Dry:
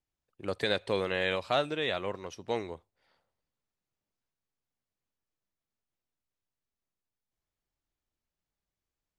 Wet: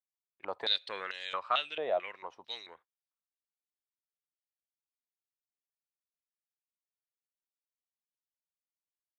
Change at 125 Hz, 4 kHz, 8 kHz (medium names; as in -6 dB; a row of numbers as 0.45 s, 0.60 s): under -20 dB, +1.5 dB, under -10 dB